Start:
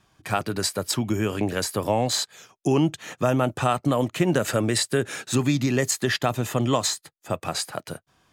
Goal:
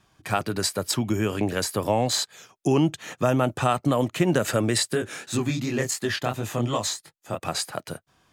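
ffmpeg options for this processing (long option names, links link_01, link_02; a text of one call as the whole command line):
ffmpeg -i in.wav -filter_complex "[0:a]asplit=3[link_01][link_02][link_03];[link_01]afade=type=out:start_time=4.93:duration=0.02[link_04];[link_02]flanger=delay=18.5:depth=7.4:speed=2.8,afade=type=in:start_time=4.93:duration=0.02,afade=type=out:start_time=7.38:duration=0.02[link_05];[link_03]afade=type=in:start_time=7.38:duration=0.02[link_06];[link_04][link_05][link_06]amix=inputs=3:normalize=0" out.wav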